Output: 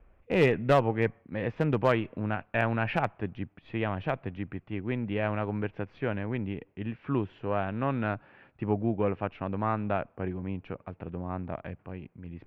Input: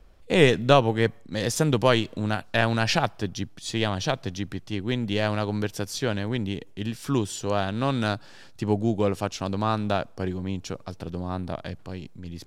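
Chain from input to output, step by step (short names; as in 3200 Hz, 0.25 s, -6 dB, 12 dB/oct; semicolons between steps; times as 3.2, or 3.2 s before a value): self-modulated delay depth 0.1 ms; Chebyshev low-pass 2500 Hz, order 4; one-sided clip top -16 dBFS, bottom -8.5 dBFS; gain -3.5 dB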